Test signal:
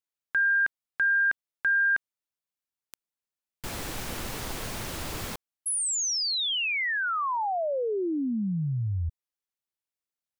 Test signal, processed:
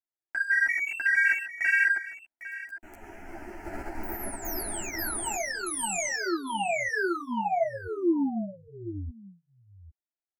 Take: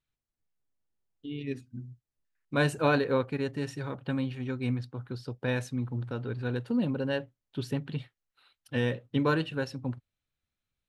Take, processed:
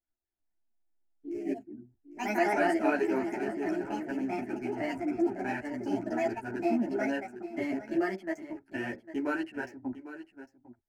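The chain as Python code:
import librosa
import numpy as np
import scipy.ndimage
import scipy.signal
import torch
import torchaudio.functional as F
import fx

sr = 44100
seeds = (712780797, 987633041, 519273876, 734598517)

p1 = fx.wiener(x, sr, points=15)
p2 = fx.echo_pitch(p1, sr, ms=222, semitones=3, count=3, db_per_echo=-3.0)
p3 = fx.level_steps(p2, sr, step_db=17)
p4 = p2 + (p3 * 10.0 ** (0.5 / 20.0))
p5 = fx.low_shelf(p4, sr, hz=230.0, db=-5.0)
p6 = fx.fixed_phaser(p5, sr, hz=740.0, stages=8)
p7 = fx.small_body(p6, sr, hz=(350.0, 670.0, 940.0), ring_ms=45, db=6)
p8 = p7 + fx.echo_single(p7, sr, ms=802, db=-14.5, dry=0)
y = fx.ensemble(p8, sr)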